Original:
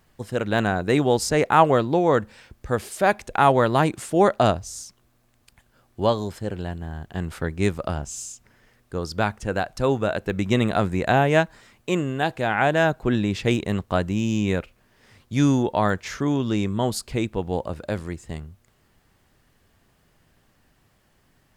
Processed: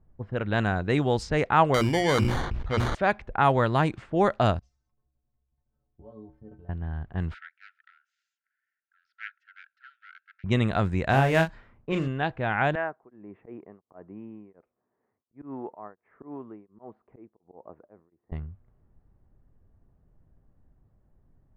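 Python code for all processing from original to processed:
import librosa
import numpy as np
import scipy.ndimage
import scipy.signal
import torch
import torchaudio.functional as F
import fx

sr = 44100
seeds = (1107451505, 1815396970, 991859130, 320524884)

y = fx.chain(x, sr, fx.hum_notches(base_hz=60, count=6),
    fx.sample_hold(seeds[0], rate_hz=2600.0, jitter_pct=0),
    fx.sustainer(db_per_s=38.0), at=(1.74, 2.95))
y = fx.chain(y, sr, fx.level_steps(step_db=16),
    fx.stiff_resonator(f0_hz=65.0, decay_s=0.48, stiffness=0.03), at=(4.59, 6.69))
y = fx.chain(y, sr, fx.self_delay(depth_ms=0.34),
    fx.brickwall_highpass(low_hz=1300.0),
    fx.dynamic_eq(hz=4100.0, q=1.5, threshold_db=-49.0, ratio=4.0, max_db=4), at=(7.34, 10.44))
y = fx.chain(y, sr, fx.block_float(bits=5),
    fx.doubler(ms=37.0, db=-7), at=(11.09, 12.08))
y = fx.chain(y, sr, fx.cabinet(low_hz=490.0, low_slope=12, high_hz=2000.0, hz=(550.0, 870.0, 1500.0), db=(-7, -3, -6)),
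    fx.auto_swell(attack_ms=114.0),
    fx.tremolo_abs(hz=1.4), at=(12.75, 18.32))
y = fx.riaa(y, sr, side='playback')
y = fx.env_lowpass(y, sr, base_hz=590.0, full_db=-9.0)
y = fx.tilt_shelf(y, sr, db=-7.0, hz=790.0)
y = y * librosa.db_to_amplitude(-5.5)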